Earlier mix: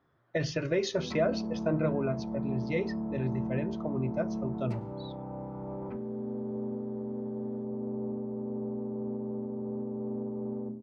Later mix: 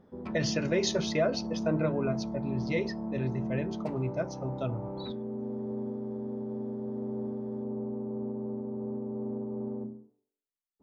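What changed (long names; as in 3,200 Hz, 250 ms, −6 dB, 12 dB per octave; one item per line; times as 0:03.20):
speech: remove low-pass filter 2,800 Hz 6 dB per octave
background: entry −0.85 s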